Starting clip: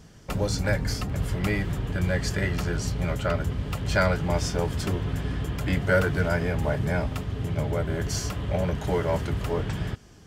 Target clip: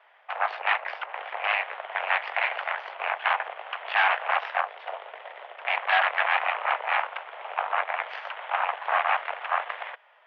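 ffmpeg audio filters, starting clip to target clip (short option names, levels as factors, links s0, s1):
-filter_complex "[0:a]asettb=1/sr,asplit=3[s0][s1][s2];[s0]atrim=end=4.614[s3];[s1]atrim=start=4.61:end=5.65,asetpts=PTS-STARTPTS,afade=t=in:d=0.004:c=qsin,afade=t=out:st=1.036:d=0.004:c=qsin,equalizer=f=1300:w=0.32:g=-8[s4];[s2]atrim=start=5.646[s5];[s3][s4]acrossfade=d=0.004:c1=hsin:c2=qsin[s6];[s6][s5]acrossfade=d=0.004:c1=qsin:c2=hsin,aeval=exprs='0.266*(cos(1*acos(clip(val(0)/0.266,-1,1)))-cos(1*PI/2))+0.0422*(cos(5*acos(clip(val(0)/0.266,-1,1)))-cos(5*PI/2))+0.0944*(cos(6*acos(clip(val(0)/0.266,-1,1)))-cos(6*PI/2))+0.119*(cos(7*acos(clip(val(0)/0.266,-1,1)))-cos(7*PI/2))':c=same,highpass=f=510:t=q:w=0.5412,highpass=f=510:t=q:w=1.307,lowpass=f=2700:t=q:w=0.5176,lowpass=f=2700:t=q:w=0.7071,lowpass=f=2700:t=q:w=1.932,afreqshift=200"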